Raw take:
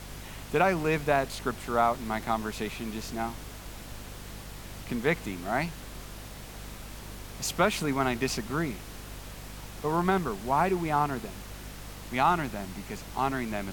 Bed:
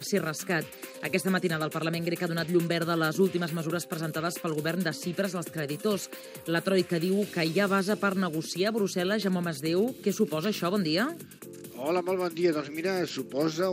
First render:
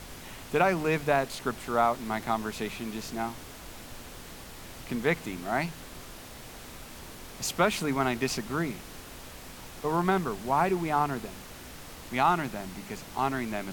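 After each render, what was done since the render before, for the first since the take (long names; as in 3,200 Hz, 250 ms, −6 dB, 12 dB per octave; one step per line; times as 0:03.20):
hum removal 50 Hz, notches 4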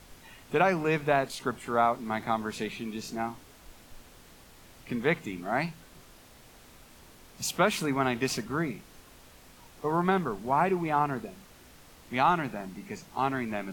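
noise reduction from a noise print 9 dB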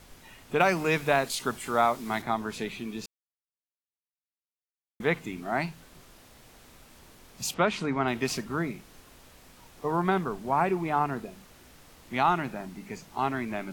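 0:00.60–0:02.22: high-shelf EQ 2,700 Hz +9.5 dB
0:03.06–0:05.00: silence
0:07.54–0:08.08: high-frequency loss of the air 94 metres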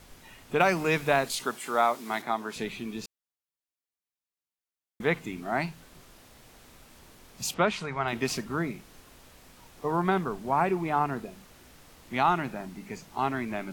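0:01.44–0:02.56: Bessel high-pass filter 280 Hz
0:07.72–0:08.13: parametric band 280 Hz −14.5 dB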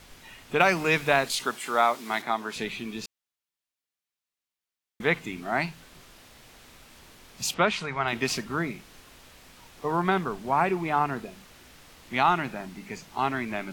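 parametric band 2,900 Hz +5 dB 2.5 octaves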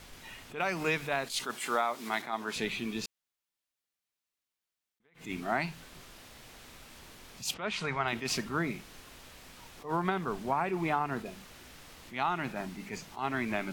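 downward compressor 12 to 1, threshold −25 dBFS, peak gain reduction 11 dB
level that may rise only so fast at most 170 dB per second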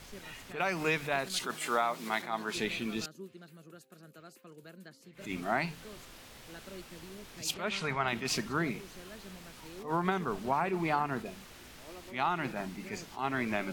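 mix in bed −22.5 dB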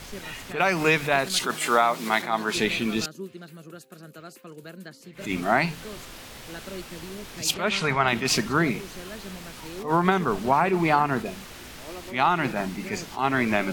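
level +9.5 dB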